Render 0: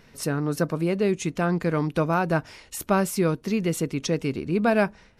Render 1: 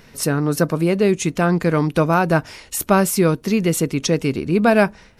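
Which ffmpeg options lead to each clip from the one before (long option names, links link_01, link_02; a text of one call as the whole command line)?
ffmpeg -i in.wav -af "highshelf=frequency=7700:gain=5.5,volume=6.5dB" out.wav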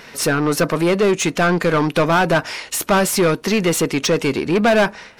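ffmpeg -i in.wav -filter_complex "[0:a]asplit=2[link_01][link_02];[link_02]highpass=frequency=720:poles=1,volume=22dB,asoftclip=type=tanh:threshold=-3dB[link_03];[link_01][link_03]amix=inputs=2:normalize=0,lowpass=frequency=4500:poles=1,volume=-6dB,volume=-4dB" out.wav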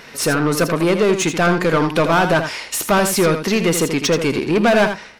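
ffmpeg -i in.wav -af "aecho=1:1:81:0.376" out.wav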